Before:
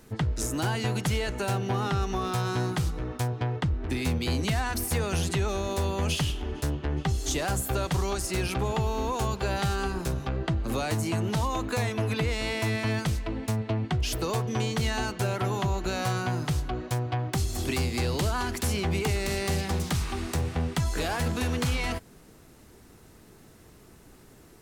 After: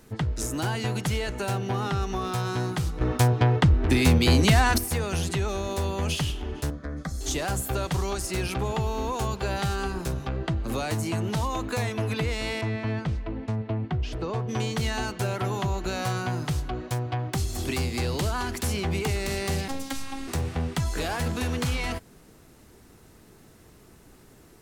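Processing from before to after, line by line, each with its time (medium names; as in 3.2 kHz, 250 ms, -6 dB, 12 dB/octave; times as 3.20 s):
3.01–4.78 s: gain +8.5 dB
6.70–7.21 s: static phaser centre 570 Hz, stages 8
12.61–14.49 s: tape spacing loss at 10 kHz 24 dB
19.68–20.28 s: robot voice 271 Hz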